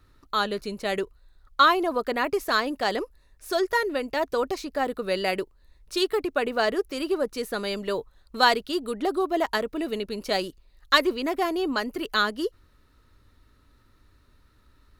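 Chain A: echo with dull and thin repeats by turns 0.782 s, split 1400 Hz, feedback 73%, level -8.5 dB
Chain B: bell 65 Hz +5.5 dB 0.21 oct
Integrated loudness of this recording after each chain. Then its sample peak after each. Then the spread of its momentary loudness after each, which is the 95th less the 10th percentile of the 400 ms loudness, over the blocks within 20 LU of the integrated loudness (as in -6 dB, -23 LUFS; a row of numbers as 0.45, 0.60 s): -26.0, -26.0 LUFS; -4.5, -4.5 dBFS; 15, 10 LU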